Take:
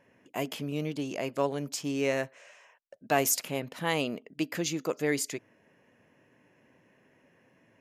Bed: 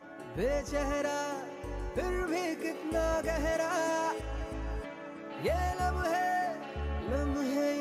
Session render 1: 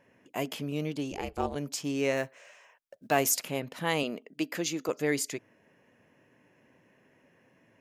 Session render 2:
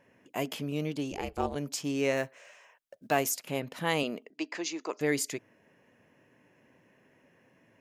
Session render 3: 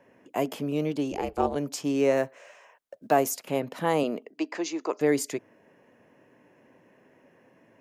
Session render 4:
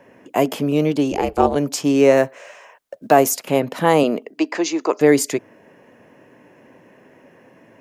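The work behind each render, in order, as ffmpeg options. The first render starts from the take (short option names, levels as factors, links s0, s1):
-filter_complex "[0:a]asplit=3[s0][s1][s2];[s0]afade=t=out:st=1.11:d=0.02[s3];[s1]aeval=exprs='val(0)*sin(2*PI*190*n/s)':c=same,afade=t=in:st=1.11:d=0.02,afade=t=out:st=1.54:d=0.02[s4];[s2]afade=t=in:st=1.54:d=0.02[s5];[s3][s4][s5]amix=inputs=3:normalize=0,asettb=1/sr,asplit=3[s6][s7][s8];[s6]atrim=end=2.174[s9];[s7]atrim=start=2.17:end=3.19,asetpts=PTS-STARTPTS,afade=t=in:d=0.004:c=qsin,afade=t=out:st=1.016:d=0.004:c=qsin,acrusher=bits=8:mode=log:mix=0:aa=0.000001[s10];[s8]atrim=start=3.186[s11];[s9][s10]acrossfade=d=0.004:c1=hsin:c2=qsin[s12];[s12][s11]acrossfade=d=0.004:c1=qsin:c2=hsin,asettb=1/sr,asplit=3[s13][s14][s15];[s13]atrim=end=4.034[s16];[s14]atrim=start=4.03:end=4.89,asetpts=PTS-STARTPTS,afade=t=in:d=0.004:c=qsin,afade=t=out:st=0.856:d=0.004:c=qsin,highpass=190[s17];[s15]atrim=start=4.886[s18];[s16][s17]acrossfade=d=0.004:c1=hsin:c2=qsin[s19];[s19][s18]acrossfade=d=0.004:c1=qsin:c2=hsin"
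-filter_complex "[0:a]asettb=1/sr,asplit=3[s0][s1][s2];[s0]atrim=end=4.304[s3];[s1]atrim=start=4.3:end=5.01,asetpts=PTS-STARTPTS,afade=t=in:d=0.004:c=qsin,afade=t=out:st=0.706:d=0.004:c=qsin,highpass=f=260:w=0.5412,highpass=f=260:w=1.3066,equalizer=f=270:t=q:w=4:g=-6,equalizer=f=510:t=q:w=4:g=-8,equalizer=f=970:t=q:w=4:g=5,equalizer=f=1400:t=q:w=4:g=-5,equalizer=f=3300:t=q:w=4:g=-5,lowpass=f=6400:w=0.5412,lowpass=f=6400:w=1.3066[s4];[s2]atrim=start=5.006[s5];[s3][s4]acrossfade=d=0.004:c1=hsin:c2=qsin[s6];[s6][s5]acrossfade=d=0.004:c1=qsin:c2=hsin,asplit=2[s7][s8];[s7]atrim=end=3.47,asetpts=PTS-STARTPTS,afade=t=out:st=2.96:d=0.51:c=qsin:silence=0.188365[s9];[s8]atrim=start=3.47,asetpts=PTS-STARTPTS,afade=t=in:d=0.004:c=hsin:silence=0.188365[s10];[s9][s10]concat=n=2:v=0:a=1"
-filter_complex "[0:a]acrossover=split=220|1300|5300[s0][s1][s2][s3];[s1]acontrast=75[s4];[s2]alimiter=level_in=2.11:limit=0.0631:level=0:latency=1:release=174,volume=0.473[s5];[s0][s4][s5][s3]amix=inputs=4:normalize=0"
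-af "volume=3.16,alimiter=limit=0.891:level=0:latency=1"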